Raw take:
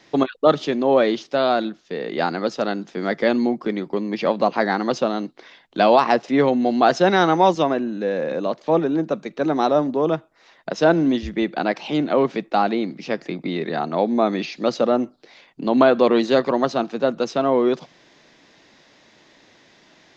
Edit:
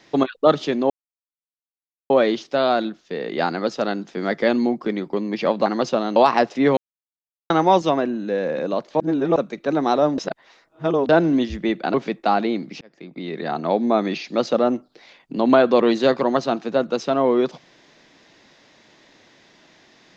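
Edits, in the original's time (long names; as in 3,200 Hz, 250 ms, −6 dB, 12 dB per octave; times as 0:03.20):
0:00.90: splice in silence 1.20 s
0:04.46–0:04.75: remove
0:05.25–0:05.89: remove
0:06.50–0:07.23: silence
0:08.73–0:09.09: reverse
0:09.91–0:10.82: reverse
0:11.67–0:12.22: remove
0:13.09–0:13.90: fade in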